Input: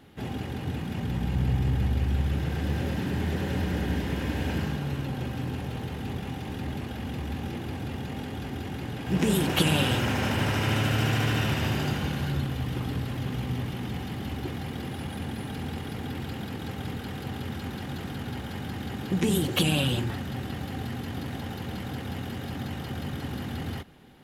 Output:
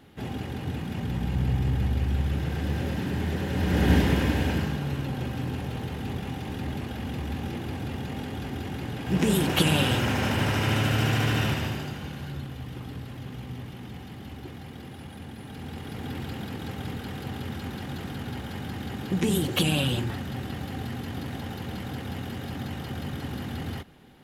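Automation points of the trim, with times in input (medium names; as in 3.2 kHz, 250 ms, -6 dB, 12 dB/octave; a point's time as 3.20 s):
3.52 s 0 dB
3.93 s +9 dB
4.69 s +1 dB
11.47 s +1 dB
11.90 s -7 dB
15.37 s -7 dB
16.11 s 0 dB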